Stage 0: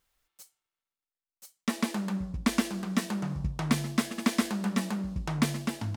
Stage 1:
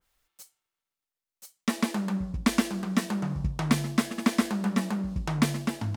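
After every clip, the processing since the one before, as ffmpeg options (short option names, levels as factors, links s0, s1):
-af "adynamicequalizer=threshold=0.00447:dfrequency=2100:dqfactor=0.7:tfrequency=2100:tqfactor=0.7:attack=5:release=100:ratio=0.375:range=2:mode=cutabove:tftype=highshelf,volume=1.33"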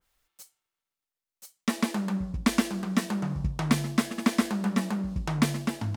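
-af anull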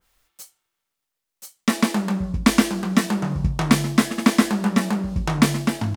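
-filter_complex "[0:a]asplit=2[s0][s1];[s1]adelay=23,volume=0.355[s2];[s0][s2]amix=inputs=2:normalize=0,volume=2.37"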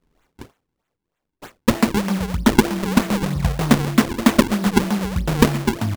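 -af "acrusher=samples=41:mix=1:aa=0.000001:lfo=1:lforange=65.6:lforate=3.2,volume=1.26"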